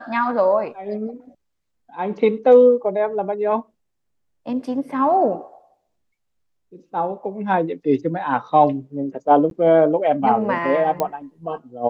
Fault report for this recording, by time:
9.5–9.51 gap 12 ms
11 pop -9 dBFS

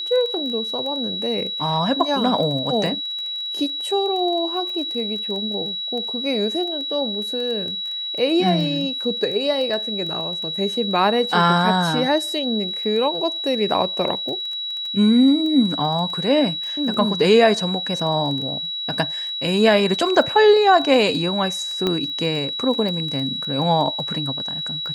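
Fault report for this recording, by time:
crackle 12/s -27 dBFS
tone 3900 Hz -25 dBFS
21.87 pop -9 dBFS

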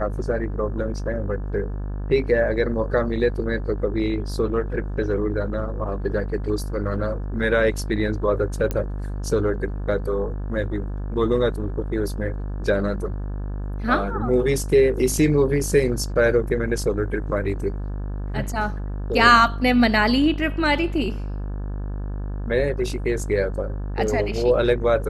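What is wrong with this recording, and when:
buzz 50 Hz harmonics 35 -28 dBFS
8.71 pop -11 dBFS

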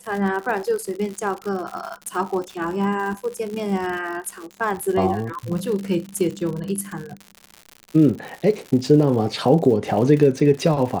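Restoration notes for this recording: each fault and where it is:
crackle 120/s -28 dBFS

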